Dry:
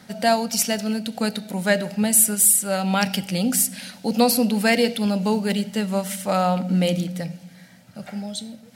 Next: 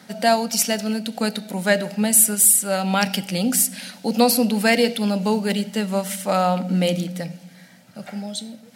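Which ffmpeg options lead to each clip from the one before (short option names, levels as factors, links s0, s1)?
-af "highpass=160,volume=1.19"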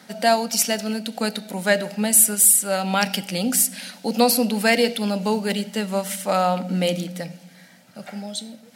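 -af "equalizer=f=65:w=0.5:g=-8"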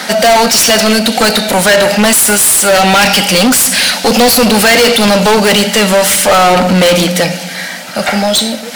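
-filter_complex "[0:a]asplit=2[s0][s1];[s1]highpass=f=720:p=1,volume=63.1,asoftclip=type=tanh:threshold=0.841[s2];[s0][s2]amix=inputs=2:normalize=0,lowpass=f=7900:p=1,volume=0.501,volume=1.19"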